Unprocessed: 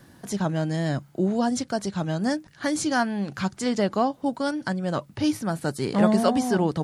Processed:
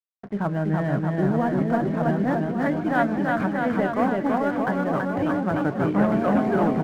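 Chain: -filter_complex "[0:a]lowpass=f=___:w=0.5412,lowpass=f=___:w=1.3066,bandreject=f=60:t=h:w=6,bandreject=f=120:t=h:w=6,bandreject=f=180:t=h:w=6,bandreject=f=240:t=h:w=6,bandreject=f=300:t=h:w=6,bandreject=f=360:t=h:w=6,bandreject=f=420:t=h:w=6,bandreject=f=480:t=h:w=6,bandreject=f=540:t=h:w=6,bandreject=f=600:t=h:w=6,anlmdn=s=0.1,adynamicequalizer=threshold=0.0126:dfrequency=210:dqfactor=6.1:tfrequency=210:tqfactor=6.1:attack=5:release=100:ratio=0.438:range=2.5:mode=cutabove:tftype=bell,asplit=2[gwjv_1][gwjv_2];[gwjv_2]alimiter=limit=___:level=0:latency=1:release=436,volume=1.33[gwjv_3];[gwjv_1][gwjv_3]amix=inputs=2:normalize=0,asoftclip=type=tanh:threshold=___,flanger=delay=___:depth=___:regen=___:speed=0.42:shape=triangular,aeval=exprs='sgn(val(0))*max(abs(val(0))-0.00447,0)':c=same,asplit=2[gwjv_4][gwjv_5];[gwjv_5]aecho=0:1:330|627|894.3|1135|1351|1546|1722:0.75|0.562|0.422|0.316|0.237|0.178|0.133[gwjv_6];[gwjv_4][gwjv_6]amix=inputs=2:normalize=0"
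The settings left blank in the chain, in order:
2.1k, 2.1k, 0.168, 0.376, 0.7, 9.3, 86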